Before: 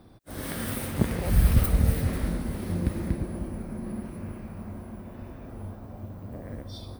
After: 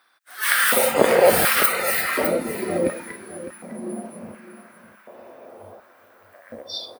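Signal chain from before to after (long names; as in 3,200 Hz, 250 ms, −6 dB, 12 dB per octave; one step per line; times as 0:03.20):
noise reduction from a noise print of the clip's start 15 dB
auto-filter high-pass square 0.69 Hz 530–1,500 Hz
on a send: single-tap delay 606 ms −13.5 dB
on the sum: boost into a limiter +17 dB
level −1 dB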